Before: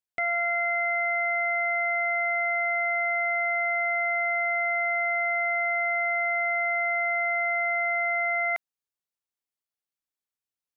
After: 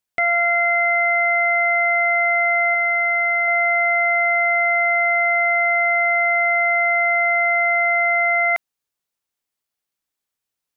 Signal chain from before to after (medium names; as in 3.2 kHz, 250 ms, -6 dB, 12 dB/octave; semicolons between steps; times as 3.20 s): 2.74–3.48 s: bass shelf 500 Hz -10 dB; trim +8.5 dB